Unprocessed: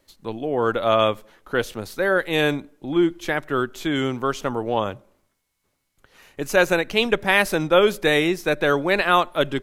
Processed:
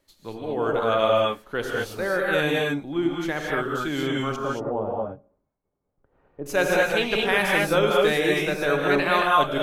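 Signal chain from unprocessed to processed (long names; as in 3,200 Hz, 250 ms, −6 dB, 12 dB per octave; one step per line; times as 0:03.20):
0:04.36–0:06.46: Chebyshev low-pass filter 670 Hz, order 2
reverb whose tail is shaped and stops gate 250 ms rising, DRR −2.5 dB
level −6 dB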